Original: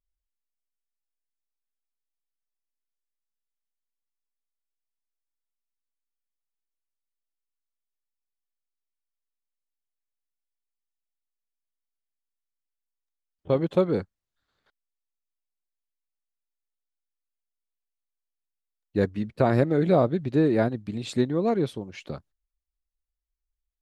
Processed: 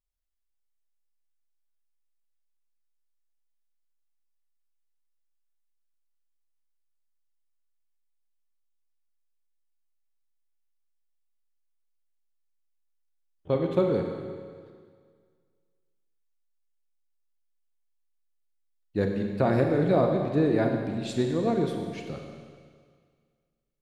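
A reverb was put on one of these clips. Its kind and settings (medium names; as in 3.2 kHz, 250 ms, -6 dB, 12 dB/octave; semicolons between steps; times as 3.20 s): Schroeder reverb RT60 1.9 s, combs from 31 ms, DRR 2.5 dB; trim -3 dB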